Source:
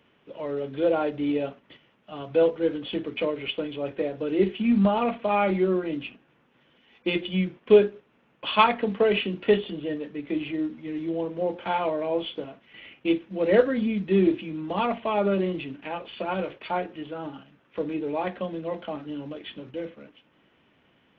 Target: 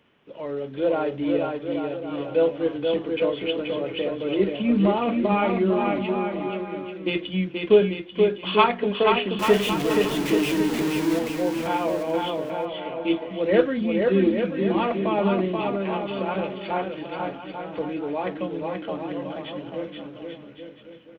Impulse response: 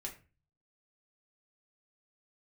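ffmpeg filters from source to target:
-filter_complex "[0:a]asettb=1/sr,asplit=3[a][b][c];[a]atrim=end=9.394[d];[b]atrim=start=9.39:end=11.19,asetpts=PTS-STARTPTS,afade=t=in:d=0.004:c=qsin,afade=t=out:st=1.796:d=0.004:c=qsin,aeval=exprs='val(0)+0.5*0.0562*sgn(val(0))':c=same[e];[c]atrim=start=11.186[f];[d][e]acrossfade=d=0.004:c1=hsin:c2=qsin[g];[g][f]acrossfade=d=0.004:c1=qsin:c2=hsin,aecho=1:1:480|840|1110|1312|1464:0.631|0.398|0.251|0.158|0.1"

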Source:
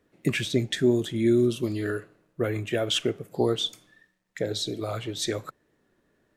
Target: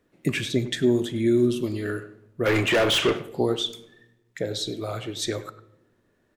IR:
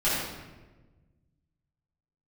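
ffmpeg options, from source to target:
-filter_complex "[0:a]asplit=3[a][b][c];[a]afade=t=out:st=2.45:d=0.02[d];[b]asplit=2[e][f];[f]highpass=f=720:p=1,volume=29dB,asoftclip=type=tanh:threshold=-13dB[g];[e][g]amix=inputs=2:normalize=0,lowpass=f=3k:p=1,volume=-6dB,afade=t=in:st=2.45:d=0.02,afade=t=out:st=3.17:d=0.02[h];[c]afade=t=in:st=3.17:d=0.02[i];[d][h][i]amix=inputs=3:normalize=0,asplit=2[j][k];[k]adelay=100,highpass=300,lowpass=3.4k,asoftclip=type=hard:threshold=-18.5dB,volume=-14dB[l];[j][l]amix=inputs=2:normalize=0,asplit=2[m][n];[1:a]atrim=start_sample=2205,asetrate=66150,aresample=44100[o];[n][o]afir=irnorm=-1:irlink=0,volume=-25dB[p];[m][p]amix=inputs=2:normalize=0"

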